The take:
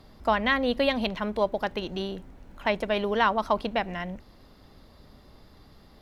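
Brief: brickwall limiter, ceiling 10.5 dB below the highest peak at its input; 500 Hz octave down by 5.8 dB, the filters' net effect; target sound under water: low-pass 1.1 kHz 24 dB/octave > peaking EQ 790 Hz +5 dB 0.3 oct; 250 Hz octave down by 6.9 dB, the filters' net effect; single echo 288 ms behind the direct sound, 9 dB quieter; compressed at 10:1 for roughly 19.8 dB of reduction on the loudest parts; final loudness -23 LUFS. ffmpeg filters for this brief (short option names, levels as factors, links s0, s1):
-af "equalizer=f=250:t=o:g=-7,equalizer=f=500:t=o:g=-7,acompressor=threshold=0.00891:ratio=10,alimiter=level_in=5.31:limit=0.0631:level=0:latency=1,volume=0.188,lowpass=f=1100:w=0.5412,lowpass=f=1100:w=1.3066,equalizer=f=790:t=o:w=0.3:g=5,aecho=1:1:288:0.355,volume=26.6"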